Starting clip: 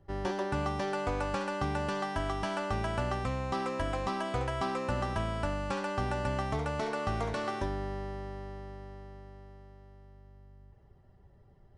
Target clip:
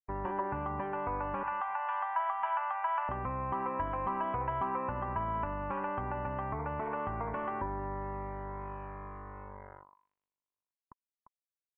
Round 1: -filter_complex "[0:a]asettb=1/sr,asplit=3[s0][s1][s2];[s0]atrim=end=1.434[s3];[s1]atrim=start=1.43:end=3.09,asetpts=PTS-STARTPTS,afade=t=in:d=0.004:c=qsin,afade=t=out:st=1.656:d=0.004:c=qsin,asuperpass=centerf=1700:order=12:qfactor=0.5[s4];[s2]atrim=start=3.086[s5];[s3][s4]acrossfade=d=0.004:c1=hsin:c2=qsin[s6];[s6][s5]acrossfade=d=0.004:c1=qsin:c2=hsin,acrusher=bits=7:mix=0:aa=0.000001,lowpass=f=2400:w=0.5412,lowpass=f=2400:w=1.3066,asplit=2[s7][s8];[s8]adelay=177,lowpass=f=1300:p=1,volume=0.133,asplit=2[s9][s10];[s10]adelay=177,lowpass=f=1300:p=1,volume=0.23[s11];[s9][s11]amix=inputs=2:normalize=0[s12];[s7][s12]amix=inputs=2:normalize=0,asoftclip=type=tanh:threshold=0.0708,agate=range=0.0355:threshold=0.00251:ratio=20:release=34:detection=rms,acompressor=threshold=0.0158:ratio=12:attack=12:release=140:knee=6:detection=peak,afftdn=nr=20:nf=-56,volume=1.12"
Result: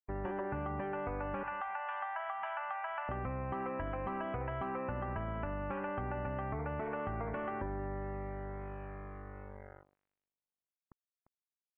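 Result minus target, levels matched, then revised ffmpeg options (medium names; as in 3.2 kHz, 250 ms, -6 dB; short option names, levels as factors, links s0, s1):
1 kHz band -3.0 dB
-filter_complex "[0:a]asettb=1/sr,asplit=3[s0][s1][s2];[s0]atrim=end=1.434[s3];[s1]atrim=start=1.43:end=3.09,asetpts=PTS-STARTPTS,afade=t=in:d=0.004:c=qsin,afade=t=out:st=1.656:d=0.004:c=qsin,asuperpass=centerf=1700:order=12:qfactor=0.5[s4];[s2]atrim=start=3.086[s5];[s3][s4]acrossfade=d=0.004:c1=hsin:c2=qsin[s6];[s6][s5]acrossfade=d=0.004:c1=qsin:c2=hsin,acrusher=bits=7:mix=0:aa=0.000001,lowpass=f=2400:w=0.5412,lowpass=f=2400:w=1.3066,asplit=2[s7][s8];[s8]adelay=177,lowpass=f=1300:p=1,volume=0.133,asplit=2[s9][s10];[s10]adelay=177,lowpass=f=1300:p=1,volume=0.23[s11];[s9][s11]amix=inputs=2:normalize=0[s12];[s7][s12]amix=inputs=2:normalize=0,asoftclip=type=tanh:threshold=0.0708,agate=range=0.0355:threshold=0.00251:ratio=20:release=34:detection=rms,acompressor=threshold=0.0158:ratio=12:attack=12:release=140:knee=6:detection=peak,equalizer=f=1000:t=o:w=0.31:g=13.5,afftdn=nr=20:nf=-56,volume=1.12"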